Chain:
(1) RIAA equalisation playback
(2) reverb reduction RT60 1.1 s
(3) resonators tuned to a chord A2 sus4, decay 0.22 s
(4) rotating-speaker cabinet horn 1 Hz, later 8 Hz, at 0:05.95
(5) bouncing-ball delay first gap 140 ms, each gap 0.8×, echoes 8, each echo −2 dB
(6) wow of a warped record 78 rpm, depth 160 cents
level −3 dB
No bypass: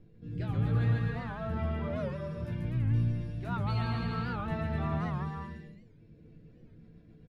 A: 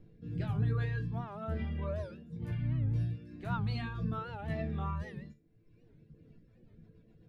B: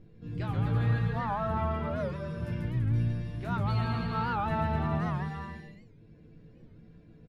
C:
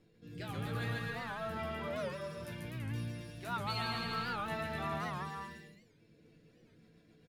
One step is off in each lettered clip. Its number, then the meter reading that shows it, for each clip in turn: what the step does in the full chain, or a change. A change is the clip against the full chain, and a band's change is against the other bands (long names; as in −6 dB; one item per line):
5, change in integrated loudness −3.5 LU
4, 1 kHz band +5.0 dB
1, 125 Hz band −12.0 dB